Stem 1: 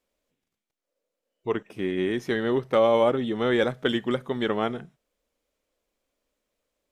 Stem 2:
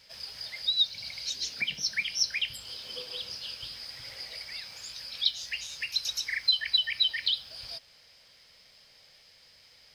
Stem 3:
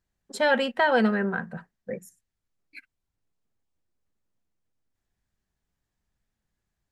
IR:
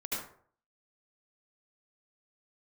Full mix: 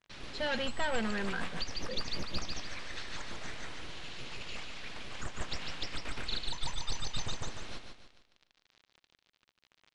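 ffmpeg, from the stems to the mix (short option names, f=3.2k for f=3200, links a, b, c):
-filter_complex "[1:a]highpass=570,aeval=exprs='abs(val(0))':c=same,acrusher=bits=7:mix=0:aa=0.000001,volume=-1dB,asplit=2[a][b];[b]volume=-6dB[c];[2:a]asoftclip=type=tanh:threshold=-23dB,volume=-8.5dB[d];[a]acompressor=threshold=-32dB:ratio=6,volume=0dB[e];[c]aecho=0:1:146|292|438|584|730|876:1|0.4|0.16|0.064|0.0256|0.0102[f];[d][e][f]amix=inputs=3:normalize=0,lowpass=f=4.3k:w=0.5412,lowpass=f=4.3k:w=1.3066,highshelf=f=2.2k:g=9.5"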